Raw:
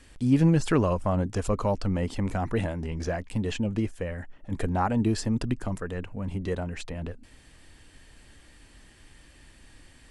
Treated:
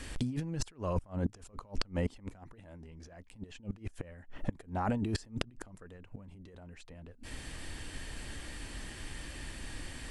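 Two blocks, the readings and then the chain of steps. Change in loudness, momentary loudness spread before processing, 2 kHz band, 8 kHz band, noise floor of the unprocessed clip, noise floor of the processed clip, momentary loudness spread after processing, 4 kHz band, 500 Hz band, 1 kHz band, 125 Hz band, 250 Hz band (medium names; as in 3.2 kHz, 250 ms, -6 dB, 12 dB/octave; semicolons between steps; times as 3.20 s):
-11.5 dB, 13 LU, -7.0 dB, -4.5 dB, -55 dBFS, -57 dBFS, 17 LU, -3.0 dB, -12.5 dB, -10.0 dB, -11.5 dB, -12.0 dB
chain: compressor with a negative ratio -33 dBFS, ratio -1; inverted gate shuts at -25 dBFS, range -25 dB; trim +4.5 dB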